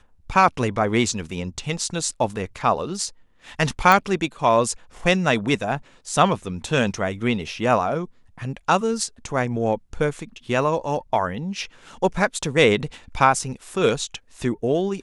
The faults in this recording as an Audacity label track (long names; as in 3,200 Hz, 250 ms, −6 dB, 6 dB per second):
3.920000	3.920000	click